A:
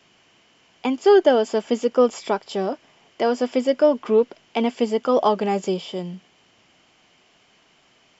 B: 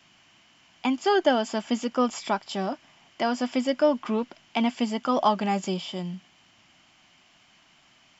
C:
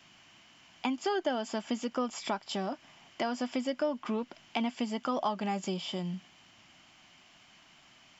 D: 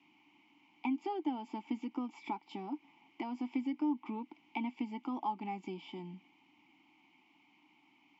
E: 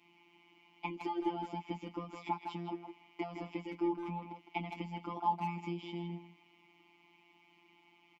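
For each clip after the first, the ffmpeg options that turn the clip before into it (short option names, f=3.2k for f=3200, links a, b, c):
-af "equalizer=f=450:w=2.5:g=-14.5"
-af "acompressor=threshold=-32dB:ratio=2.5"
-filter_complex "[0:a]asplit=3[a][b][c];[a]bandpass=f=300:t=q:w=8,volume=0dB[d];[b]bandpass=f=870:t=q:w=8,volume=-6dB[e];[c]bandpass=f=2.24k:t=q:w=8,volume=-9dB[f];[d][e][f]amix=inputs=3:normalize=0,volume=6dB"
-filter_complex "[0:a]asplit=2[a][b];[b]adelay=160,highpass=300,lowpass=3.4k,asoftclip=type=hard:threshold=-32.5dB,volume=-6dB[c];[a][c]amix=inputs=2:normalize=0,afftfilt=real='hypot(re,im)*cos(PI*b)':imag='0':win_size=1024:overlap=0.75,volume=5dB"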